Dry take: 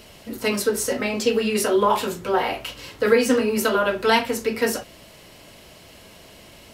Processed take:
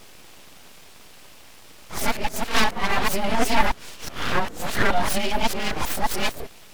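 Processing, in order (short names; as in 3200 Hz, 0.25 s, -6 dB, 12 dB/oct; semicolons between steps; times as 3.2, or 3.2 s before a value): whole clip reversed; frequency shift -23 Hz; full-wave rectifier; gain +1.5 dB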